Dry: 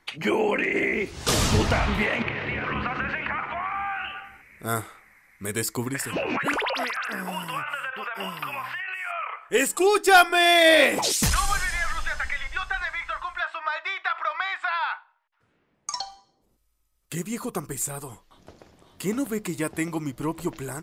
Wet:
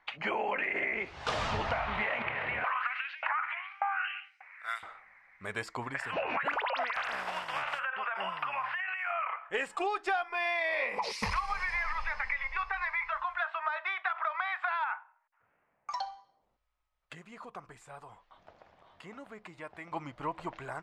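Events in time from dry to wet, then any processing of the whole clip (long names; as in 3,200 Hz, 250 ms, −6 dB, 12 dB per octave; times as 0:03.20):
0:02.64–0:04.83: auto-filter high-pass saw up 1.7 Hz 710–5,700 Hz
0:06.94–0:07.78: compressing power law on the bin magnitudes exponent 0.4
0:10.28–0:13.12: EQ curve with evenly spaced ripples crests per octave 0.87, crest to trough 11 dB
0:14.84–0:15.91: flat-topped bell 5,400 Hz −13.5 dB
0:17.13–0:19.92: downward compressor 1.5 to 1, threshold −50 dBFS
whole clip: low-pass filter 2,600 Hz 12 dB per octave; low shelf with overshoot 490 Hz −10 dB, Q 1.5; downward compressor 12 to 1, threshold −26 dBFS; level −2 dB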